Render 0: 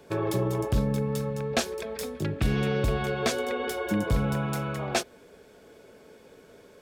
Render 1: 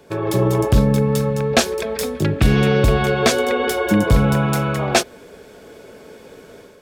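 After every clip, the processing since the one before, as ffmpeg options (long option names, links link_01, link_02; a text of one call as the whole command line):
ffmpeg -i in.wav -af "dynaudnorm=framelen=220:gausssize=3:maxgain=7dB,volume=4dB" out.wav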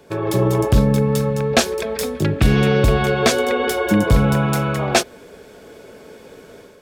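ffmpeg -i in.wav -af anull out.wav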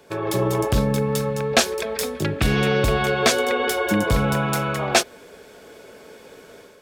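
ffmpeg -i in.wav -af "lowshelf=frequency=430:gain=-7" out.wav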